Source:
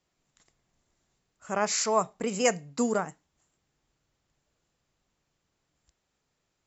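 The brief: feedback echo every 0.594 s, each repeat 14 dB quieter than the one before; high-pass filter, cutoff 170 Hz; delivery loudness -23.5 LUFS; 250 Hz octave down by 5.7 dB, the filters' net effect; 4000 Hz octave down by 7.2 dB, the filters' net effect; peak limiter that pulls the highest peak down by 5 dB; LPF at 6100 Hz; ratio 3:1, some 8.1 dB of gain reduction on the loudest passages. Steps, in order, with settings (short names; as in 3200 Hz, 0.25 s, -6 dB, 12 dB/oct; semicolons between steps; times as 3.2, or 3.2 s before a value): HPF 170 Hz; LPF 6100 Hz; bell 250 Hz -5 dB; bell 4000 Hz -9 dB; compressor 3:1, threshold -31 dBFS; limiter -25 dBFS; feedback echo 0.594 s, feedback 20%, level -14 dB; gain +14.5 dB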